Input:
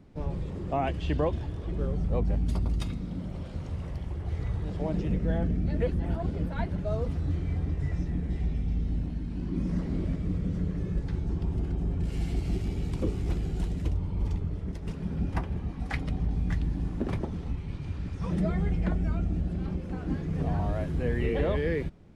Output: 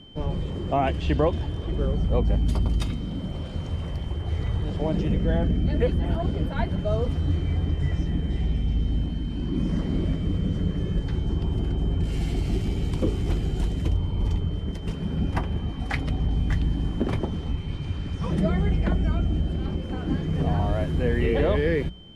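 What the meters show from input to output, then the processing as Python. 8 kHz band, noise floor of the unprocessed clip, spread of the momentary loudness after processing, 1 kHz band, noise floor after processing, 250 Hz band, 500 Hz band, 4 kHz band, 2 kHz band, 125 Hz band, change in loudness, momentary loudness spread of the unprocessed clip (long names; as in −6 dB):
can't be measured, −38 dBFS, 7 LU, +5.5 dB, −32 dBFS, +4.5 dB, +5.5 dB, +11.0 dB, +5.5 dB, +4.5 dB, +5.0 dB, 7 LU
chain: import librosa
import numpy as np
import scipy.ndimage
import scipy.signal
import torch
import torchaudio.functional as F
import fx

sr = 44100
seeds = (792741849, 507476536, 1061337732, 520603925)

y = fx.hum_notches(x, sr, base_hz=60, count=3)
y = y + 10.0 ** (-54.0 / 20.0) * np.sin(2.0 * np.pi * 3100.0 * np.arange(len(y)) / sr)
y = F.gain(torch.from_numpy(y), 5.5).numpy()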